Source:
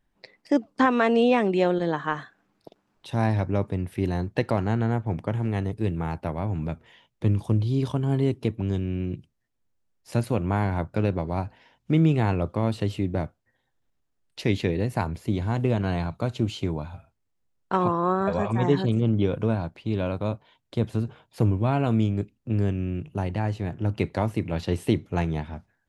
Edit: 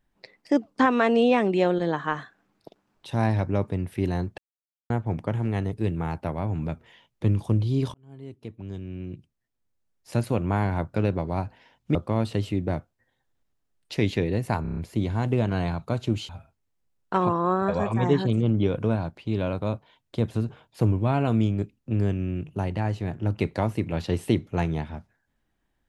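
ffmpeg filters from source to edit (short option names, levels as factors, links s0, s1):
-filter_complex "[0:a]asplit=11[s0][s1][s2][s3][s4][s5][s6][s7][s8][s9][s10];[s0]atrim=end=4.38,asetpts=PTS-STARTPTS,afade=t=out:st=4.376:d=0.004:c=hsin[s11];[s1]atrim=start=4.38:end=4.9,asetpts=PTS-STARTPTS,volume=0[s12];[s2]atrim=start=4.9:end=7.94,asetpts=PTS-STARTPTS,afade=t=in:d=0.004:c=hsin,afade=t=out:st=3.036:d=0.004:c=hsin[s13];[s3]atrim=start=7.94:end=11.952,asetpts=PTS-STARTPTS,afade=t=in:d=2.34[s14];[s4]atrim=start=12.418:end=15.122[s15];[s5]atrim=start=15.088:end=15.122[s16];[s6]atrim=start=15.088:end=15.122[s17];[s7]atrim=start=15.088:end=15.122[s18];[s8]atrim=start=15.088:end=15.122[s19];[s9]atrim=start=15.088:end=16.612[s20];[s10]atrim=start=16.878[s21];[s11][s12][s13][s14]concat=n=4:v=0:a=1[s22];[s22][s15]acrossfade=d=0.004:c1=hsin:c2=hsin[s23];[s23][s16]acrossfade=d=0.004:c1=hsin:c2=hsin[s24];[s24][s17]acrossfade=d=0.004:c1=hsin:c2=hsin[s25];[s25][s18]acrossfade=d=0.004:c1=hsin:c2=hsin[s26];[s26][s19]acrossfade=d=0.004:c1=hsin:c2=hsin[s27];[s27][s20]acrossfade=d=0.004:c1=hsin:c2=hsin[s28];[s28][s21]acrossfade=d=0.004:c1=hsin:c2=hsin"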